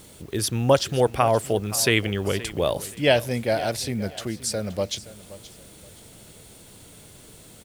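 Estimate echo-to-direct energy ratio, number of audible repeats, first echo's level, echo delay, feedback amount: -16.5 dB, 2, -17.0 dB, 524 ms, 29%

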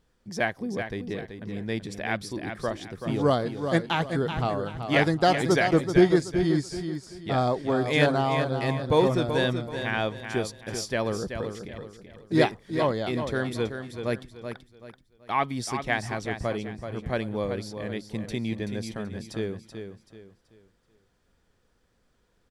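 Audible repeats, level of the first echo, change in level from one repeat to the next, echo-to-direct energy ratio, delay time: 3, -8.0 dB, -9.5 dB, -7.5 dB, 381 ms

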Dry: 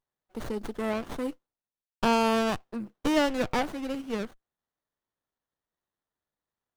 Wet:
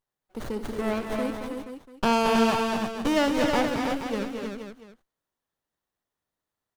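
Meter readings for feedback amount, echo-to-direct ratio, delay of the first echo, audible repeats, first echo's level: no regular repeats, -1.0 dB, 60 ms, 5, -13.5 dB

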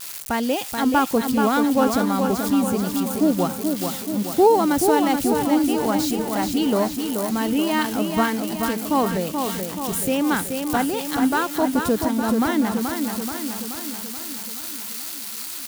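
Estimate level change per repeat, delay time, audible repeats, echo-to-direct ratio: -4.5 dB, 430 ms, 7, -3.5 dB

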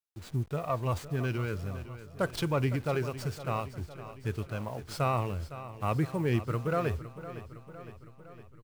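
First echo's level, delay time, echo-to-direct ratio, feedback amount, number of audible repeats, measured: -14.0 dB, 510 ms, -12.0 dB, 60%, 5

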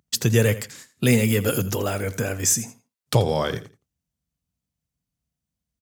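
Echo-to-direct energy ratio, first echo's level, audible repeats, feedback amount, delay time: -16.0 dB, -16.0 dB, 2, 23%, 83 ms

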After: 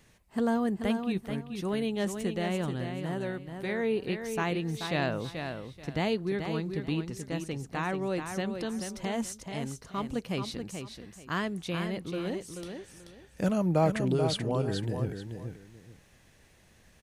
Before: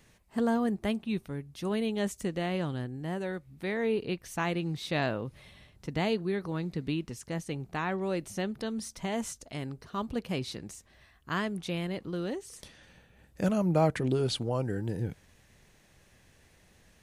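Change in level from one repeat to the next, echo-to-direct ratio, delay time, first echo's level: -12.5 dB, -7.0 dB, 433 ms, -7.0 dB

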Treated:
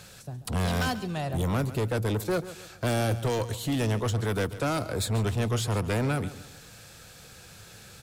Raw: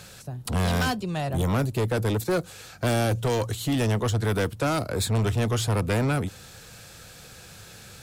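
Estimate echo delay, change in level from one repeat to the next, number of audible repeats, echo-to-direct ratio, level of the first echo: 139 ms, -8.0 dB, 3, -14.5 dB, -15.0 dB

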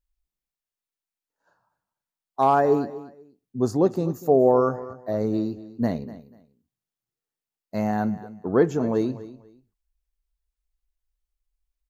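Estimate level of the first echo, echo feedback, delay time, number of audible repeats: -16.5 dB, 22%, 244 ms, 2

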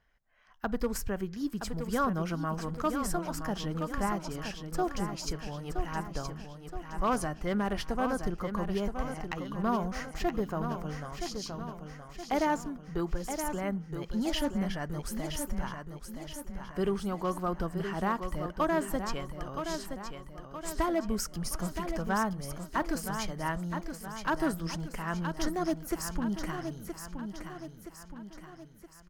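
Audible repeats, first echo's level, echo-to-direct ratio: 5, -7.5 dB, -6.0 dB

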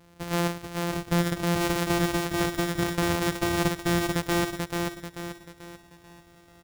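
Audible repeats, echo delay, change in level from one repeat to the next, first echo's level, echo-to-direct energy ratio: 5, 438 ms, -7.5 dB, -3.5 dB, -2.5 dB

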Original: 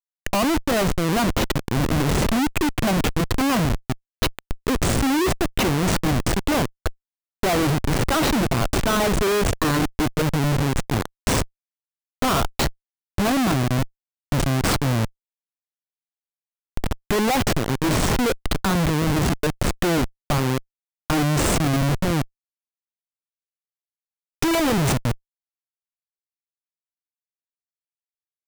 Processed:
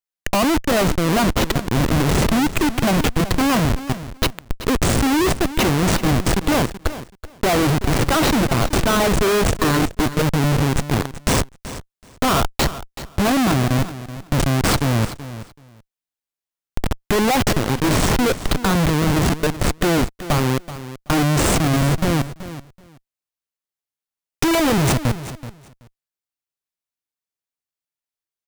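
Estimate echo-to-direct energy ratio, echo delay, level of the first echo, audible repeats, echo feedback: -14.0 dB, 379 ms, -14.0 dB, 2, 17%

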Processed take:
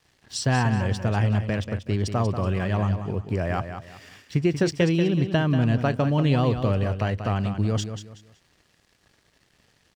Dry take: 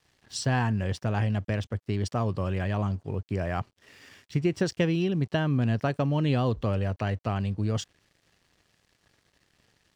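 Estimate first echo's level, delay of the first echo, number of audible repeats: -9.0 dB, 187 ms, 3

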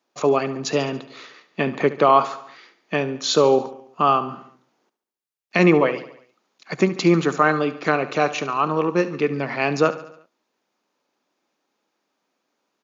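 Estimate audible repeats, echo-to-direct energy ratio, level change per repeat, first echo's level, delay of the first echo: 4, -13.5 dB, -5.0 dB, -15.0 dB, 71 ms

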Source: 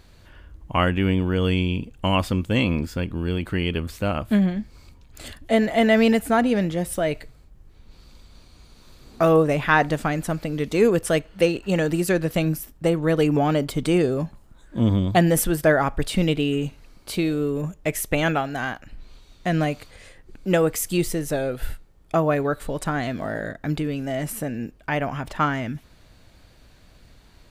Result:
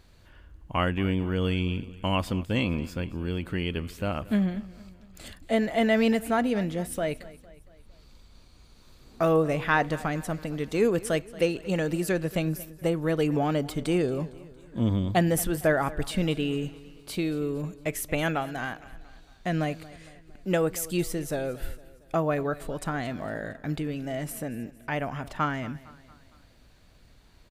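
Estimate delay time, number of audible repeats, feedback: 229 ms, 3, 51%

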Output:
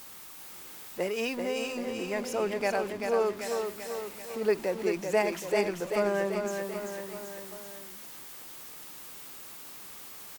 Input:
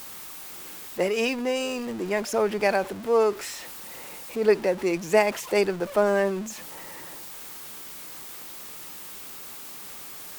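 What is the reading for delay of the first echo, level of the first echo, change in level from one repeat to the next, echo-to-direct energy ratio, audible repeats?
388 ms, -5.5 dB, -5.0 dB, -4.0 dB, 4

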